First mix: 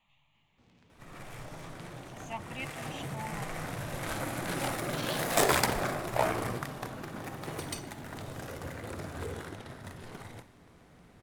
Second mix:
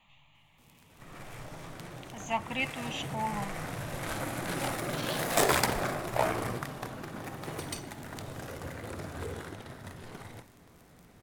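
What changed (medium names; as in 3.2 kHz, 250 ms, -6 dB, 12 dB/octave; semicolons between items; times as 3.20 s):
speech +8.5 dB; first sound: remove distance through air 160 m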